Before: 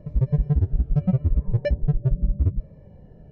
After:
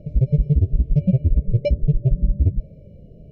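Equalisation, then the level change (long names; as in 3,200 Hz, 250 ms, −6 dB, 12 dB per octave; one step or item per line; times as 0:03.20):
linear-phase brick-wall band-stop 700–2,100 Hz
+3.5 dB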